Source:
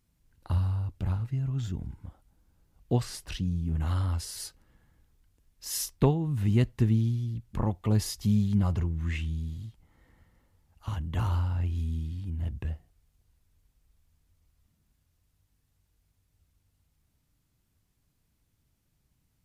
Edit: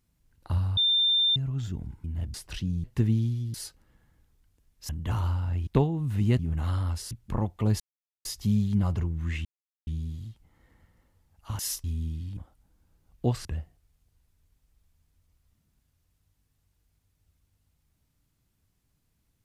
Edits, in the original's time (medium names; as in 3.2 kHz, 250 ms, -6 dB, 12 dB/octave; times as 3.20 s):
0.77–1.36 s: bleep 3.59 kHz -20 dBFS
2.04–3.12 s: swap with 12.28–12.58 s
3.62–4.34 s: swap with 6.66–7.36 s
5.69–5.94 s: swap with 10.97–11.75 s
8.05 s: insert silence 0.45 s
9.25 s: insert silence 0.42 s